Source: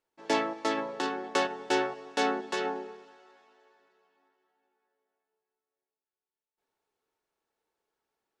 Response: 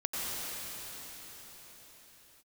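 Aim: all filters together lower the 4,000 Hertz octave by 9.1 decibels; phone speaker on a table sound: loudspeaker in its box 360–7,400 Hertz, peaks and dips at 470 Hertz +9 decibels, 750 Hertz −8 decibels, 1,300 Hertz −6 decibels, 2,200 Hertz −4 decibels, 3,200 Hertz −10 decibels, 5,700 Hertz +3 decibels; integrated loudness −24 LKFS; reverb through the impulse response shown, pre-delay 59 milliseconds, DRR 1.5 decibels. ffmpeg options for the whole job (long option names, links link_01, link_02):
-filter_complex "[0:a]equalizer=frequency=4000:width_type=o:gain=-7.5,asplit=2[link_01][link_02];[1:a]atrim=start_sample=2205,adelay=59[link_03];[link_02][link_03]afir=irnorm=-1:irlink=0,volume=-9dB[link_04];[link_01][link_04]amix=inputs=2:normalize=0,highpass=frequency=360:width=0.5412,highpass=frequency=360:width=1.3066,equalizer=frequency=470:width_type=q:width=4:gain=9,equalizer=frequency=750:width_type=q:width=4:gain=-8,equalizer=frequency=1300:width_type=q:width=4:gain=-6,equalizer=frequency=2200:width_type=q:width=4:gain=-4,equalizer=frequency=3200:width_type=q:width=4:gain=-10,equalizer=frequency=5700:width_type=q:width=4:gain=3,lowpass=frequency=7400:width=0.5412,lowpass=frequency=7400:width=1.3066,volume=6.5dB"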